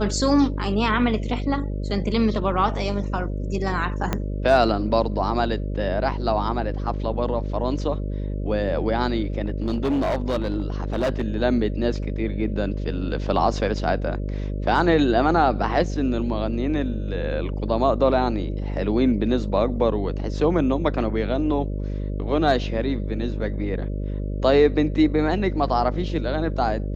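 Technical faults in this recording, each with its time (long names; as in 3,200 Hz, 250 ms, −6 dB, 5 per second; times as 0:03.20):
mains buzz 50 Hz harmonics 12 −27 dBFS
0:04.13: click −9 dBFS
0:09.46–0:11.28: clipping −18.5 dBFS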